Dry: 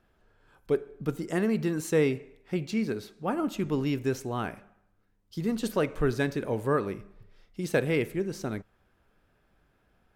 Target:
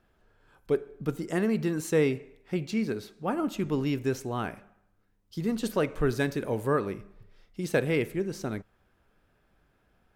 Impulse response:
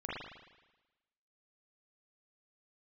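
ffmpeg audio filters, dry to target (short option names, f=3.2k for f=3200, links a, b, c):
-filter_complex "[0:a]asettb=1/sr,asplit=3[a][b][c];[a]atrim=end=6.094[d];[b]atrim=start=6.09:end=6.71,asetpts=PTS-STARTPTS,afade=t=in:d=0.004:c=qsin,afade=t=out:st=0.616:d=0.004:c=qsin,highshelf=f=8.2k:g=6[e];[c]atrim=start=6.706[f];[d][e]acrossfade=d=0.004:c1=hsin:c2=qsin[g];[g][f]acrossfade=d=0.004:c1=qsin:c2=hsin"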